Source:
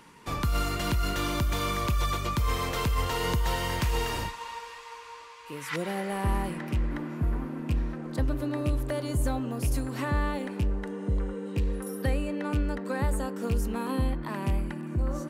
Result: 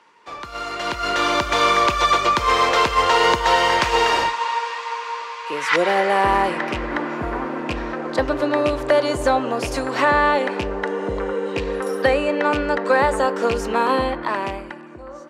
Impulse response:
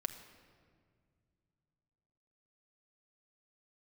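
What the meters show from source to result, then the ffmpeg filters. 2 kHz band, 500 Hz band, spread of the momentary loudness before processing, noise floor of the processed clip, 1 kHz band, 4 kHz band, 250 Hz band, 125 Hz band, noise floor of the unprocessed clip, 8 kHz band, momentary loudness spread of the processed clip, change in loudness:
+15.0 dB, +14.5 dB, 6 LU, -37 dBFS, +16.0 dB, +12.5 dB, +5.0 dB, -5.0 dB, -45 dBFS, +6.5 dB, 11 LU, +10.5 dB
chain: -filter_complex "[0:a]acrossover=split=380 6800:gain=0.0708 1 0.0631[a][b][c];[a][b][c]amix=inputs=3:normalize=0,dynaudnorm=f=120:g=17:m=16.5dB,asplit=2[d][e];[1:a]atrim=start_sample=2205,atrim=end_sample=3528,lowpass=2.3k[f];[e][f]afir=irnorm=-1:irlink=0,volume=-8dB[g];[d][g]amix=inputs=2:normalize=0,volume=-1dB"

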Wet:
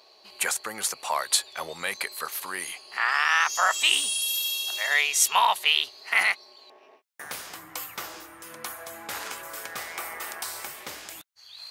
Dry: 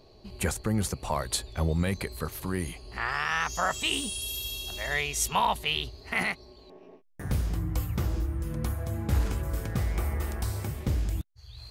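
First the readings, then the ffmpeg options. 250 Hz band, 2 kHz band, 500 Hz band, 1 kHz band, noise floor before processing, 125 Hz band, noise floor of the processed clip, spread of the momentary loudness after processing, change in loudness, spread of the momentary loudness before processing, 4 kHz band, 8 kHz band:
-16.0 dB, +7.0 dB, -3.0 dB, +4.5 dB, -54 dBFS, under -25 dB, -56 dBFS, 17 LU, +5.0 dB, 7 LU, +7.5 dB, +7.5 dB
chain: -af "highpass=960,volume=7.5dB"

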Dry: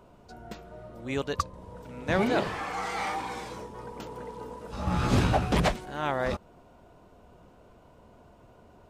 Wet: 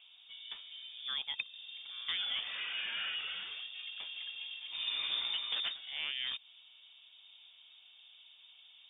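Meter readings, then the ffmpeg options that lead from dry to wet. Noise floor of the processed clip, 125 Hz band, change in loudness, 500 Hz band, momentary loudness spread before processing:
-60 dBFS, under -40 dB, -7.0 dB, -32.5 dB, 19 LU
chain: -filter_complex "[0:a]lowpass=f=3.1k:t=q:w=0.5098,lowpass=f=3.1k:t=q:w=0.6013,lowpass=f=3.1k:t=q:w=0.9,lowpass=f=3.1k:t=q:w=2.563,afreqshift=-3700,acrossover=split=590|1400[a][b][c];[a]acompressor=threshold=-58dB:ratio=4[d];[b]acompressor=threshold=-51dB:ratio=4[e];[c]acompressor=threshold=-31dB:ratio=4[f];[d][e][f]amix=inputs=3:normalize=0,volume=-4dB"

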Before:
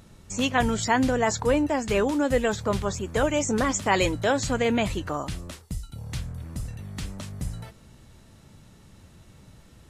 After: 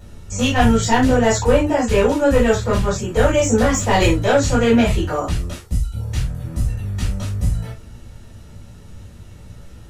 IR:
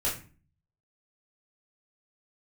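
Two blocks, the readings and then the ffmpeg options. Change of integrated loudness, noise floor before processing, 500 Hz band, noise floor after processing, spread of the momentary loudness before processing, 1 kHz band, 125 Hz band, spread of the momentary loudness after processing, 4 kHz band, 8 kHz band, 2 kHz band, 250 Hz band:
+8.0 dB, -53 dBFS, +8.5 dB, -40 dBFS, 14 LU, +6.5 dB, +11.5 dB, 10 LU, +6.0 dB, +6.5 dB, +5.5 dB, +8.0 dB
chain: -filter_complex "[0:a]acontrast=32,aeval=exprs='clip(val(0),-1,0.178)':c=same[a];[1:a]atrim=start_sample=2205,atrim=end_sample=3969[b];[a][b]afir=irnorm=-1:irlink=0,volume=-5dB"

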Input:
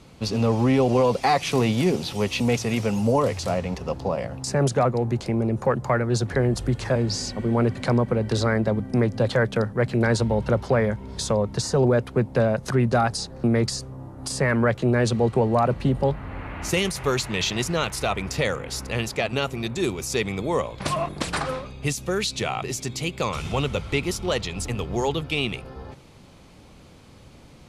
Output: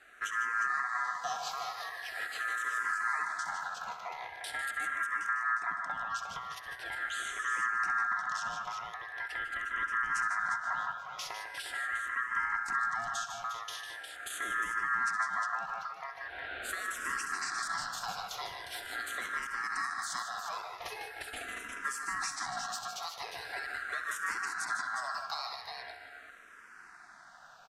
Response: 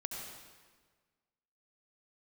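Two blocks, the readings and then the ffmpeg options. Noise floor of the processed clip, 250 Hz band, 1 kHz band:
-53 dBFS, -35.0 dB, -5.5 dB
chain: -filter_complex "[0:a]acrossover=split=340|2800[a][b][c];[b]acompressor=threshold=-36dB:ratio=6[d];[a][d][c]amix=inputs=3:normalize=0,aecho=1:1:66|150|167|356:0.251|0.398|0.224|0.447,asplit=2[e][f];[1:a]atrim=start_sample=2205,asetrate=27783,aresample=44100[g];[f][g]afir=irnorm=-1:irlink=0,volume=-13.5dB[h];[e][h]amix=inputs=2:normalize=0,alimiter=limit=-15dB:level=0:latency=1:release=448,aeval=exprs='val(0)*sin(2*PI*1500*n/s)':c=same,equalizer=f=730:w=6.7:g=13,asplit=2[i][j];[j]afreqshift=-0.42[k];[i][k]amix=inputs=2:normalize=1,volume=-5.5dB"

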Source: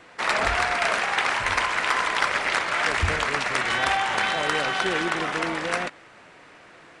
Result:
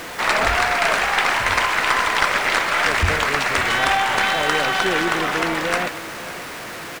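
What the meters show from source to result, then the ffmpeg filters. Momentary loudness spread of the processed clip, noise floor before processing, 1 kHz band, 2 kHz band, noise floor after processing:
13 LU, -50 dBFS, +5.0 dB, +5.0 dB, -33 dBFS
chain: -af "aeval=exprs='val(0)+0.5*0.0251*sgn(val(0))':c=same,aecho=1:1:546:0.178,aeval=exprs='0.266*(cos(1*acos(clip(val(0)/0.266,-1,1)))-cos(1*PI/2))+0.0299*(cos(2*acos(clip(val(0)/0.266,-1,1)))-cos(2*PI/2))':c=same,volume=3.5dB"

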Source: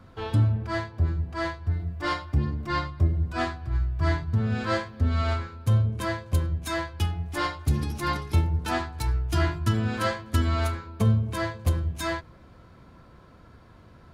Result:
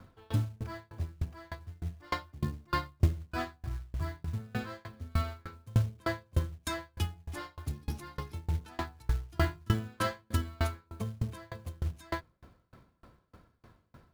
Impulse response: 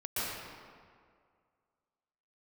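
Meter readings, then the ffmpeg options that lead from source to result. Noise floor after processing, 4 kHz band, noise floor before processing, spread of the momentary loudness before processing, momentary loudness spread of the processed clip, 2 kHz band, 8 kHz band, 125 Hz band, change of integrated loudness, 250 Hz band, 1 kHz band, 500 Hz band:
-71 dBFS, -8.0 dB, -52 dBFS, 6 LU, 11 LU, -8.5 dB, -7.0 dB, -9.0 dB, -9.0 dB, -9.0 dB, -8.5 dB, -9.0 dB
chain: -af "acrusher=bits=6:mode=log:mix=0:aa=0.000001,aeval=exprs='val(0)*pow(10,-32*if(lt(mod(3.3*n/s,1),2*abs(3.3)/1000),1-mod(3.3*n/s,1)/(2*abs(3.3)/1000),(mod(3.3*n/s,1)-2*abs(3.3)/1000)/(1-2*abs(3.3)/1000))/20)':c=same"

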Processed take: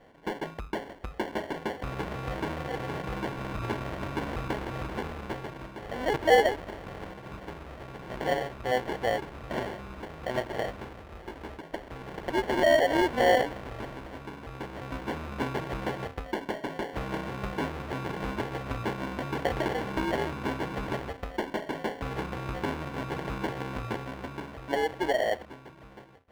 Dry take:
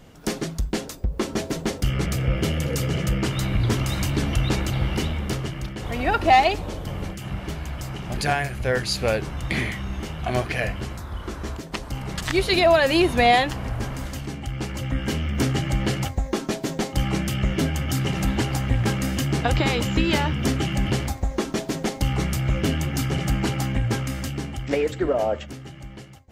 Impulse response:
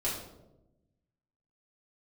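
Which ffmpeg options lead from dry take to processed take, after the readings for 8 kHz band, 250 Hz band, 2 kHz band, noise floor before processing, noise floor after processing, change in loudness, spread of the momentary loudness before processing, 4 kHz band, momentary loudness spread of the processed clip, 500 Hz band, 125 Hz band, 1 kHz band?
-15.5 dB, -9.0 dB, -6.0 dB, -38 dBFS, -48 dBFS, -7.0 dB, 13 LU, -10.5 dB, 17 LU, -3.5 dB, -14.5 dB, -6.0 dB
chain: -af "acrusher=samples=35:mix=1:aa=0.000001,bass=f=250:g=-12,treble=f=4k:g=-15,volume=-3.5dB"

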